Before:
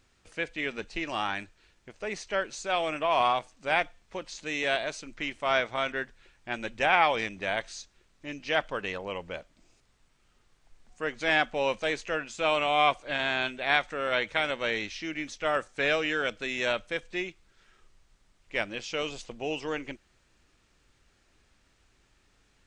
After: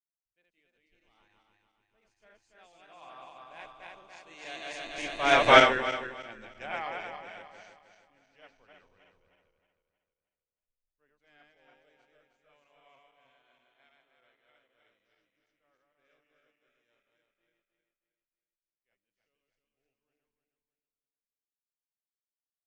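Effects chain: regenerating reverse delay 0.15 s, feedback 79%, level -1 dB; Doppler pass-by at 5.51, 15 m/s, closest 1.1 m; three-band expander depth 70%; gain +4 dB

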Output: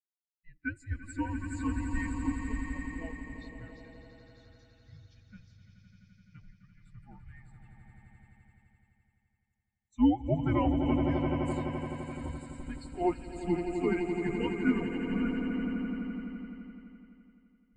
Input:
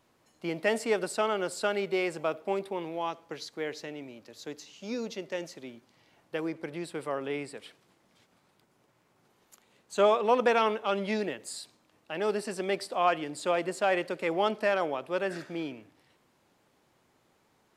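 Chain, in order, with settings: HPF 150 Hz 24 dB/oct; tilt +3.5 dB/oct; frequency shift -350 Hz; on a send: swelling echo 85 ms, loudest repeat 8, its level -5.5 dB; on the sum: spectral expander 2.5:1; gain -4.5 dB

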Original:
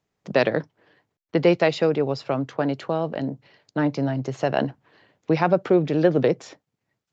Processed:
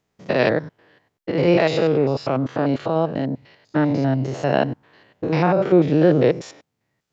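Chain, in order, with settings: stepped spectrum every 0.1 s; gain +6 dB

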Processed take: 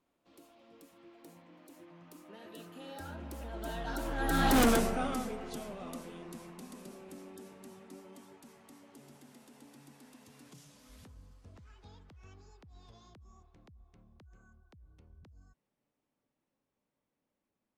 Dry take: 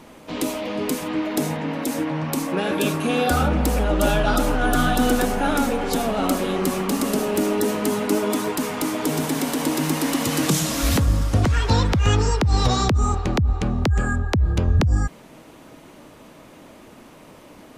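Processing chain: Doppler pass-by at 4.61, 32 m/s, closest 2 m; hard clip -25.5 dBFS, distortion -5 dB; gain +3.5 dB

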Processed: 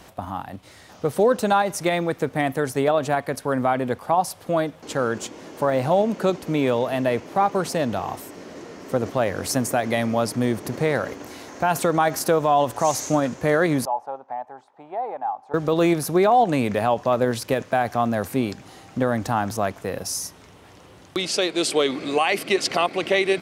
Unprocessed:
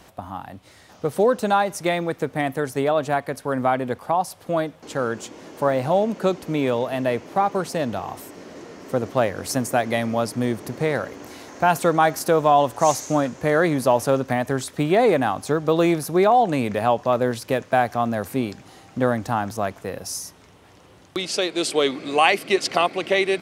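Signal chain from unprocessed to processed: 13.85–15.54 band-pass 830 Hz, Q 8.5; in parallel at -2.5 dB: level quantiser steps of 19 dB; on the sum: limiter -9.5 dBFS, peak gain reduction 10.5 dB

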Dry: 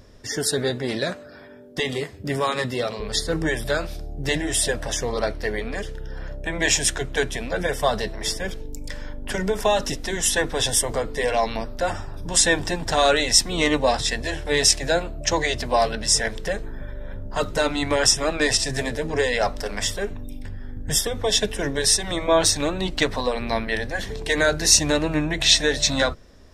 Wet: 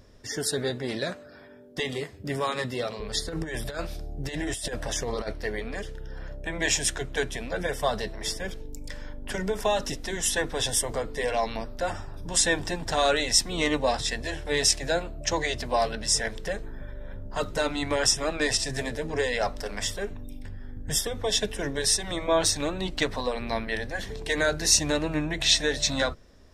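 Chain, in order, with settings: 3.27–5.33 negative-ratio compressor -25 dBFS, ratio -0.5; gain -5 dB

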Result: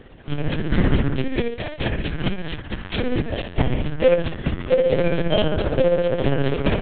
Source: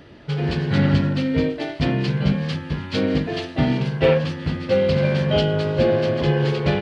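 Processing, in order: 1.27–3.07 tilt +1.5 dB/oct; tremolo 15 Hz, depth 56%; LPC vocoder at 8 kHz pitch kept; gain +3 dB

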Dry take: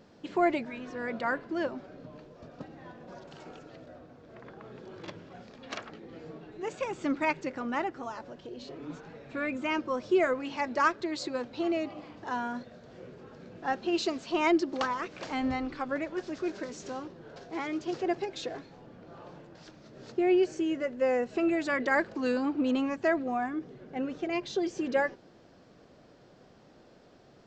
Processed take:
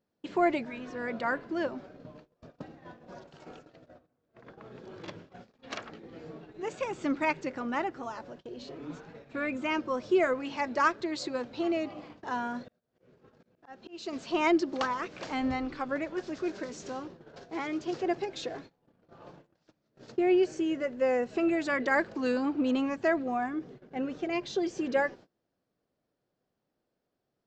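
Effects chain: gate -47 dBFS, range -25 dB; 12.68–14.13 auto swell 0.486 s

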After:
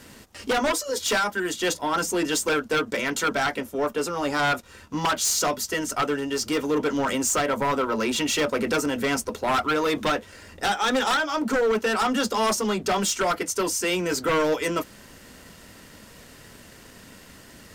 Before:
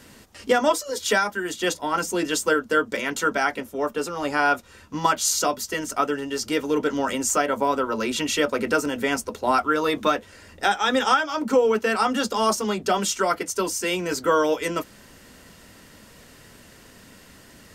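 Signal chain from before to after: wavefolder -16 dBFS; sample leveller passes 1; gain -1.5 dB

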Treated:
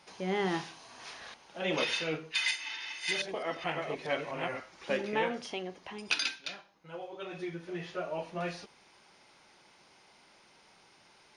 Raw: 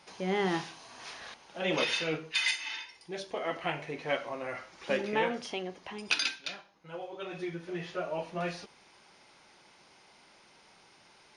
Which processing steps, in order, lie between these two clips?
2.37–4.6 reverse delay 0.424 s, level -2 dB; gain -1.5 dB

